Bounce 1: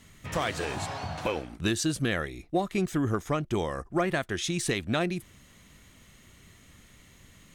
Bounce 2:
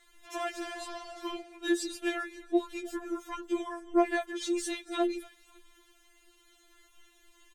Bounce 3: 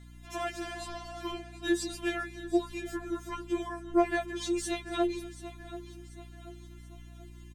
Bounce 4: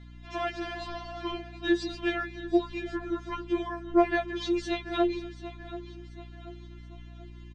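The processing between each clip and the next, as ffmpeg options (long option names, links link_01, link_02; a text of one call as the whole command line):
ffmpeg -i in.wav -filter_complex "[0:a]asplit=4[link_01][link_02][link_03][link_04];[link_02]adelay=276,afreqshift=-84,volume=-17.5dB[link_05];[link_03]adelay=552,afreqshift=-168,volume=-25.7dB[link_06];[link_04]adelay=828,afreqshift=-252,volume=-33.9dB[link_07];[link_01][link_05][link_06][link_07]amix=inputs=4:normalize=0,afftfilt=real='re*4*eq(mod(b,16),0)':imag='im*4*eq(mod(b,16),0)':win_size=2048:overlap=0.75,volume=-3.5dB" out.wav
ffmpeg -i in.wav -af "aeval=exprs='val(0)+0.00355*(sin(2*PI*60*n/s)+sin(2*PI*2*60*n/s)/2+sin(2*PI*3*60*n/s)/3+sin(2*PI*4*60*n/s)/4+sin(2*PI*5*60*n/s)/5)':channel_layout=same,aecho=1:1:734|1468|2202|2936:0.178|0.0818|0.0376|0.0173" out.wav
ffmpeg -i in.wav -af "lowpass=frequency=4800:width=0.5412,lowpass=frequency=4800:width=1.3066,volume=3dB" out.wav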